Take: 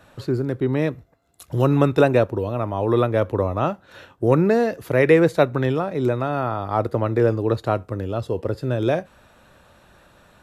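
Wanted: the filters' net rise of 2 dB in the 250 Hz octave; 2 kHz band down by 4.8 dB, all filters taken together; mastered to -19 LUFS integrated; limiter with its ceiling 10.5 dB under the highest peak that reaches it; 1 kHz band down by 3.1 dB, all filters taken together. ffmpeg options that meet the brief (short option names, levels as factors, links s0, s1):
-af "equalizer=f=250:t=o:g=3,equalizer=f=1000:t=o:g=-3.5,equalizer=f=2000:t=o:g=-5,volume=1.78,alimiter=limit=0.398:level=0:latency=1"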